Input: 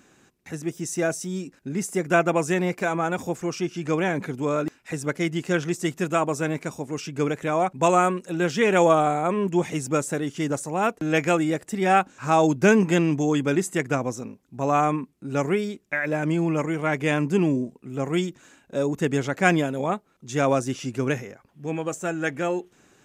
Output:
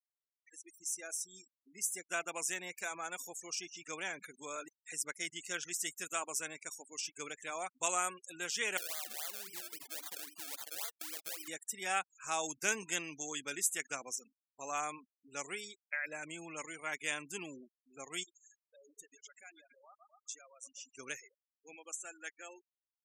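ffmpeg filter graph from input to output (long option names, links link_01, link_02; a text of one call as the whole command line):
ffmpeg -i in.wav -filter_complex "[0:a]asettb=1/sr,asplit=3[link_01][link_02][link_03];[link_01]atrim=end=8.774[link_04];[link_02]atrim=start=8.77:end=11.48,asetpts=PTS-STARTPTS,afade=type=in:duration=0.004:curve=qsin,afade=type=out:start_time=2.706:duration=0.004:curve=qsin,bandreject=frequency=50:width_type=h:width=6,bandreject=frequency=100:width_type=h:width=6,bandreject=frequency=150:width_type=h:width=6,bandreject=frequency=200:width_type=h:width=6,bandreject=frequency=250:width_type=h:width=6,bandreject=frequency=300:width_type=h:width=6,bandreject=frequency=350:width_type=h:width=6,bandreject=frequency=400:width_type=h:width=6,acompressor=threshold=-28dB:ratio=10:attack=3.2:release=140:knee=1:detection=peak,acrusher=samples=31:mix=1:aa=0.000001:lfo=1:lforange=31:lforate=3.7[link_05];[link_03]atrim=start=11.476[link_06];[link_04][link_05]acrossfade=duration=0.004:curve1=hsin:curve2=qsin[link_07];[link_07][link_06]acrossfade=duration=0.004:curve1=qsin:curve2=hsin,asettb=1/sr,asplit=3[link_08][link_09][link_10];[link_08]atrim=end=18.234[link_11];[link_09]atrim=start=18.23:end=20.97,asetpts=PTS-STARTPTS,afade=type=in:duration=0.004:curve=qsin,afade=type=out:start_time=2.736:duration=0.004:curve=qsin,aecho=1:1:123|246|369|492|615:0.2|0.0998|0.0499|0.0249|0.0125,atrim=end_sample=120834,acompressor=threshold=-36dB:ratio=6:attack=3.2:release=140:knee=1:detection=peak[link_12];[link_10]atrim=start=20.966[link_13];[link_11][link_12]acrossfade=duration=0.004:curve1=hsin:curve2=qsin[link_14];[link_14][link_13]acrossfade=duration=0.004:curve1=qsin:curve2=hsin,aderivative,dynaudnorm=framelen=300:gausssize=13:maxgain=6.5dB,afftfilt=real='re*gte(hypot(re,im),0.00891)':imag='im*gte(hypot(re,im),0.00891)':win_size=1024:overlap=0.75,volume=-5.5dB" out.wav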